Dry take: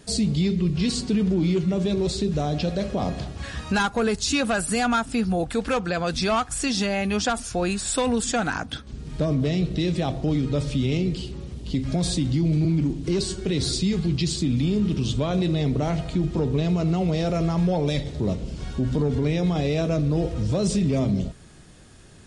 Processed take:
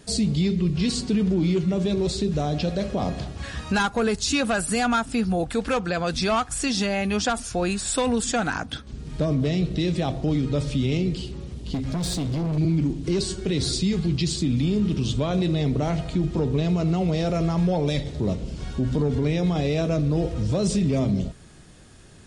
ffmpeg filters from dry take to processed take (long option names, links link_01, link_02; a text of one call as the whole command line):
ffmpeg -i in.wav -filter_complex "[0:a]asettb=1/sr,asplit=3[link_01][link_02][link_03];[link_01]atrim=end=11.744[link_04];[link_02]atrim=start=11.74:end=12.58,asetpts=PTS-STARTPTS,afade=type=in:duration=0.004:curve=qsin,afade=type=out:start_time=0.836:duration=0.004:curve=qsin,volume=23dB,asoftclip=hard,volume=-23dB[link_05];[link_03]atrim=start=12.576[link_06];[link_04][link_05]acrossfade=duration=0.004:curve1=hsin:curve2=qsin[link_07];[link_07][link_06]acrossfade=duration=0.004:curve1=qsin:curve2=hsin" out.wav